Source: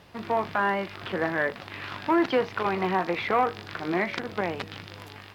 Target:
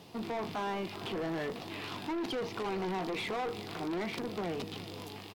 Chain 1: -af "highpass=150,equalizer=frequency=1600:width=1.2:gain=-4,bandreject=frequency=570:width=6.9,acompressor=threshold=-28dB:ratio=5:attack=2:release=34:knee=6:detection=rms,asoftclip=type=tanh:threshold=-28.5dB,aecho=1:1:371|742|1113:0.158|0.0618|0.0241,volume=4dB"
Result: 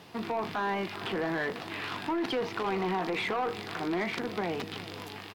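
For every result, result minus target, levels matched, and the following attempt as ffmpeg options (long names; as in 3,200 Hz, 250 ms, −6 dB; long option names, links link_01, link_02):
soft clipping: distortion −7 dB; 2,000 Hz band +3.0 dB
-af "highpass=150,equalizer=frequency=1600:width=1.2:gain=-4,bandreject=frequency=570:width=6.9,acompressor=threshold=-28dB:ratio=5:attack=2:release=34:knee=6:detection=rms,asoftclip=type=tanh:threshold=-36dB,aecho=1:1:371|742|1113:0.158|0.0618|0.0241,volume=4dB"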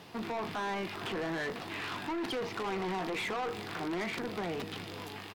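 2,000 Hz band +3.5 dB
-af "highpass=150,equalizer=frequency=1600:width=1.2:gain=-13.5,bandreject=frequency=570:width=6.9,acompressor=threshold=-28dB:ratio=5:attack=2:release=34:knee=6:detection=rms,asoftclip=type=tanh:threshold=-36dB,aecho=1:1:371|742|1113:0.158|0.0618|0.0241,volume=4dB"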